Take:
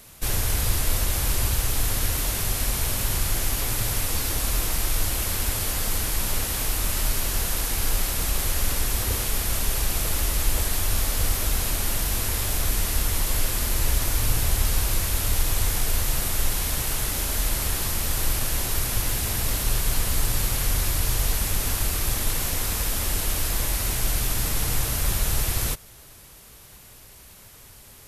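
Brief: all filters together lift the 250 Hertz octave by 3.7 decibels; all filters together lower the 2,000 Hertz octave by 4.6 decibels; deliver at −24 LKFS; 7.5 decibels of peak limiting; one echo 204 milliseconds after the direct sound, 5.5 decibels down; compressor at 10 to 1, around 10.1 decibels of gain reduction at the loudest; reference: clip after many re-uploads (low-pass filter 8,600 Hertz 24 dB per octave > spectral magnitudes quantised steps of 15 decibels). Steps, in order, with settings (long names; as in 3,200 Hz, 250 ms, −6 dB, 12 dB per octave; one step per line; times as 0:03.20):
parametric band 250 Hz +5 dB
parametric band 2,000 Hz −6 dB
downward compressor 10 to 1, threshold −27 dBFS
brickwall limiter −25 dBFS
low-pass filter 8,600 Hz 24 dB per octave
single-tap delay 204 ms −5.5 dB
spectral magnitudes quantised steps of 15 dB
level +13 dB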